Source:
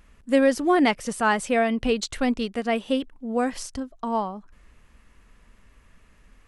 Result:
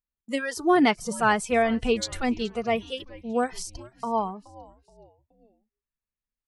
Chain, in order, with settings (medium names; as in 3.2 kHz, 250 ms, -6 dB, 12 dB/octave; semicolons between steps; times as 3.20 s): spectral noise reduction 22 dB; gate -53 dBFS, range -19 dB; on a send: frequency-shifting echo 424 ms, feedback 44%, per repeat -140 Hz, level -20 dB